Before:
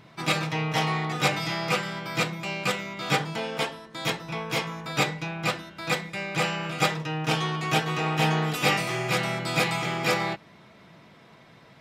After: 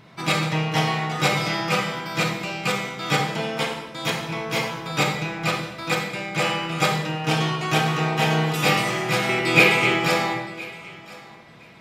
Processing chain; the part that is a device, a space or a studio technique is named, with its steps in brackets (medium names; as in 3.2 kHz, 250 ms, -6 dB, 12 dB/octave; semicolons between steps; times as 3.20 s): 9.29–9.96 s: fifteen-band graphic EQ 100 Hz +6 dB, 400 Hz +12 dB, 2.5 kHz +11 dB; thinning echo 1016 ms, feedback 16%, level -20 dB; bathroom (reverberation RT60 1.0 s, pre-delay 27 ms, DRR 3.5 dB); trim +2 dB